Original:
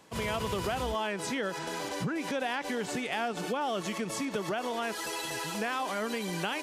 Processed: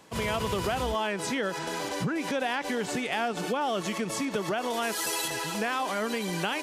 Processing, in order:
0:04.70–0:05.28: high-shelf EQ 6,100 Hz +9.5 dB
level +3 dB

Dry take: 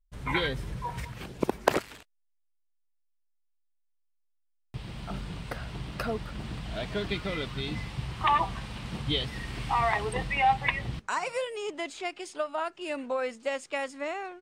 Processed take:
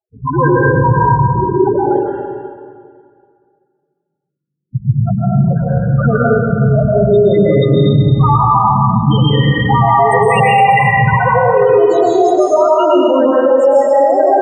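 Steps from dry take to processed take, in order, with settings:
variable-slope delta modulation 64 kbit/s
high-pass filter 110 Hz 12 dB per octave
mains-hum notches 50/100/150/200/250/300/350/400/450 Hz
dynamic equaliser 2,700 Hz, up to −5 dB, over −48 dBFS, Q 2.4
notch filter 2,200 Hz, Q 5.6
leveller curve on the samples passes 5
downward compressor, threshold −18 dBFS, peak gain reduction 9 dB
spectral peaks only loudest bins 4
convolution reverb RT60 2.1 s, pre-delay 108 ms, DRR −7.5 dB
boost into a limiter +9 dB
level −1 dB

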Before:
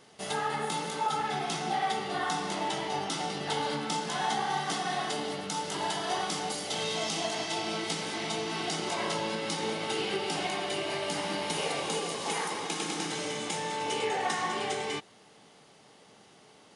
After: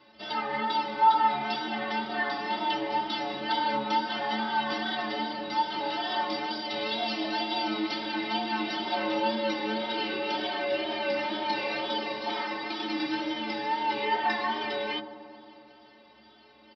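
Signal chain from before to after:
comb filter 3.3 ms, depth 75%
tape wow and flutter 64 cents
downsampling to 11,025 Hz
stiff-string resonator 65 Hz, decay 0.44 s, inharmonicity 0.03
on a send: delay with a low-pass on its return 90 ms, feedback 80%, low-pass 910 Hz, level −11.5 dB
on the sum: level +8.5 dB

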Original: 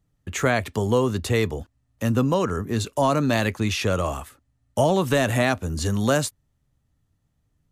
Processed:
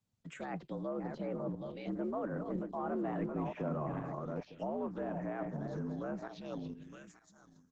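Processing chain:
feedback delay that plays each chunk backwards 422 ms, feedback 42%, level −8 dB
source passing by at 0:03.20, 29 m/s, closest 11 metres
frequency shifter +68 Hz
high-shelf EQ 3,000 Hz +3 dB
reversed playback
downward compressor 5 to 1, threshold −43 dBFS, peak gain reduction 22 dB
reversed playback
downsampling to 16,000 Hz
phaser swept by the level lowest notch 350 Hz, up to 4,600 Hz, full sweep at −40.5 dBFS
treble cut that deepens with the level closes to 1,100 Hz, closed at −41 dBFS
level +8 dB
Opus 12 kbit/s 48,000 Hz

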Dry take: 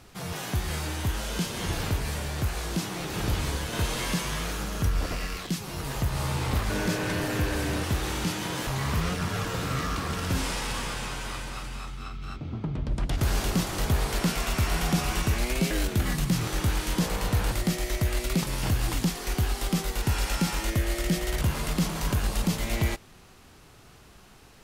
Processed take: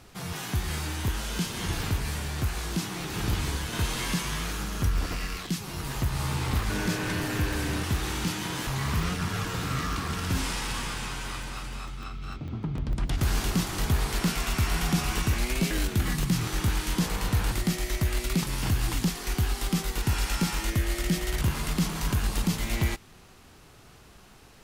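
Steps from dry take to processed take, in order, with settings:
dynamic equaliser 560 Hz, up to −7 dB, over −49 dBFS, Q 2.1
regular buffer underruns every 0.15 s, samples 64, zero, from 0:00.33

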